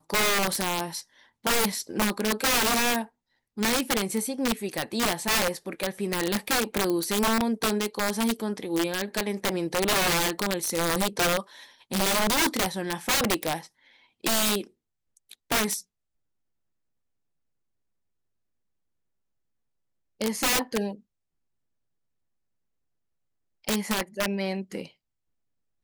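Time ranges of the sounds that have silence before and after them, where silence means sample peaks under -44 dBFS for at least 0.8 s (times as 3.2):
20.21–20.97
23.64–24.88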